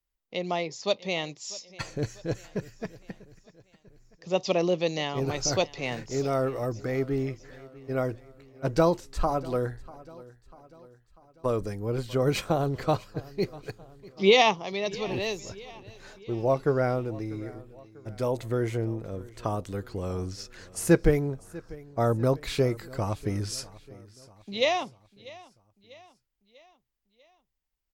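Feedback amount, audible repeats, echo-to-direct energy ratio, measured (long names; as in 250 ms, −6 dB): 52%, 3, −19.0 dB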